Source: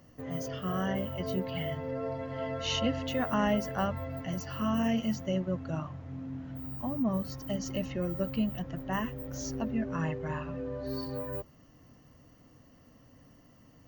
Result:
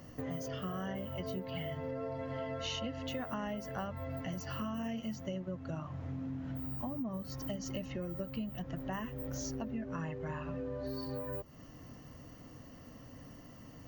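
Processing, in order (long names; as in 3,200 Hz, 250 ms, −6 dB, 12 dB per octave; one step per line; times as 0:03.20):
downward compressor 6 to 1, threshold −43 dBFS, peak gain reduction 18 dB
level +6 dB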